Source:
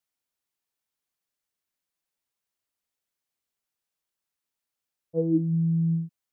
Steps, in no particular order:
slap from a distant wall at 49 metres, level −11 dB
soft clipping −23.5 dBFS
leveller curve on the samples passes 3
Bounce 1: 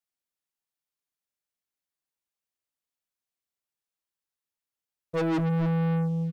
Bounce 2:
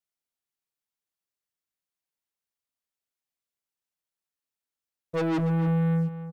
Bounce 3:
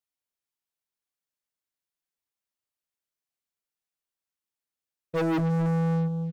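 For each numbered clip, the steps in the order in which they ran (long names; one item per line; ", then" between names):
slap from a distant wall, then soft clipping, then leveller curve on the samples
soft clipping, then leveller curve on the samples, then slap from a distant wall
leveller curve on the samples, then slap from a distant wall, then soft clipping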